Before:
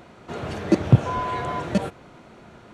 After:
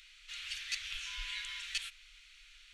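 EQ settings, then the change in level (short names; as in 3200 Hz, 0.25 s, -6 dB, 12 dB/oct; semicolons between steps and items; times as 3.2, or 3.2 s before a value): inverse Chebyshev band-stop 110–690 Hz, stop band 70 dB; bell 260 Hz -13.5 dB 1.2 oct; high shelf 4300 Hz -10 dB; +8.0 dB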